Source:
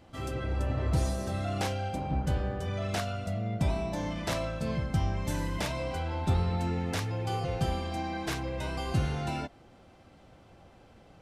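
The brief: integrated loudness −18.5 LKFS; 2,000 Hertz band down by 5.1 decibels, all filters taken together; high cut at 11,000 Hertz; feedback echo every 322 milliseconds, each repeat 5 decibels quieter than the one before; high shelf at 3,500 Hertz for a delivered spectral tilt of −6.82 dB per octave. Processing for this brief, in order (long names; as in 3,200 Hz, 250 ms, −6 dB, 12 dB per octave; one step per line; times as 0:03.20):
low-pass filter 11,000 Hz
parametric band 2,000 Hz −5.5 dB
high-shelf EQ 3,500 Hz −4 dB
repeating echo 322 ms, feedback 56%, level −5 dB
level +12.5 dB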